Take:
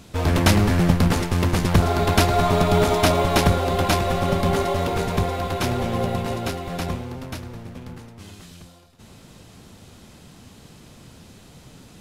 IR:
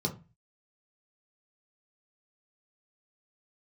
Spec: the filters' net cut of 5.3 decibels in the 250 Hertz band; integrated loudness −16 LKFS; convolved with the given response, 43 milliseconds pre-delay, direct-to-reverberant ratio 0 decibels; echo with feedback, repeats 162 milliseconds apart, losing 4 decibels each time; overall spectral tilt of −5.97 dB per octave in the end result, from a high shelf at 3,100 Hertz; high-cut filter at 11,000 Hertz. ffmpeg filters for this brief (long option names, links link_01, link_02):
-filter_complex "[0:a]lowpass=11000,equalizer=frequency=250:width_type=o:gain=-8.5,highshelf=frequency=3100:gain=4.5,aecho=1:1:162|324|486|648|810|972|1134|1296|1458:0.631|0.398|0.25|0.158|0.0994|0.0626|0.0394|0.0249|0.0157,asplit=2[link_01][link_02];[1:a]atrim=start_sample=2205,adelay=43[link_03];[link_02][link_03]afir=irnorm=-1:irlink=0,volume=-5dB[link_04];[link_01][link_04]amix=inputs=2:normalize=0,volume=-3.5dB"